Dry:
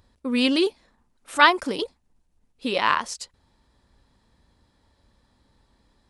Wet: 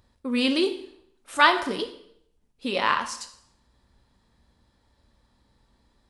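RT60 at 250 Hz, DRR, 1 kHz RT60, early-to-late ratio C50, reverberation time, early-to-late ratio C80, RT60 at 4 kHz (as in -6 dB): 0.75 s, 7.0 dB, 0.70 s, 11.5 dB, 0.70 s, 14.0 dB, 0.65 s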